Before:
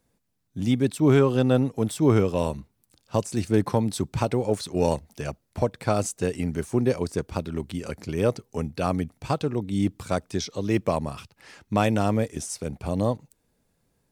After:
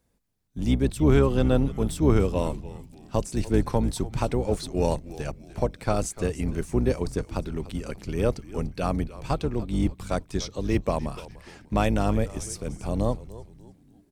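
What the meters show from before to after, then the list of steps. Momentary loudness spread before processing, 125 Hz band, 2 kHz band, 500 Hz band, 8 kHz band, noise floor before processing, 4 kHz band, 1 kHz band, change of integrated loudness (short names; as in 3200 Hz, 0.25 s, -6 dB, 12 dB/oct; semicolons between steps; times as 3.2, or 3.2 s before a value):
11 LU, -0.5 dB, -2.0 dB, -2.0 dB, -2.0 dB, -72 dBFS, -2.0 dB, -2.0 dB, -1.0 dB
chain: octaver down 2 oct, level -1 dB; frequency-shifting echo 0.294 s, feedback 40%, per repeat -110 Hz, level -16 dB; gain -2 dB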